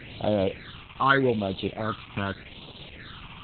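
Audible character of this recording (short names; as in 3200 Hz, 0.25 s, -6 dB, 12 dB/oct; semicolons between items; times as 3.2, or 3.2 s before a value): a quantiser's noise floor 6-bit, dither triangular; phasing stages 8, 0.83 Hz, lowest notch 520–1800 Hz; Opus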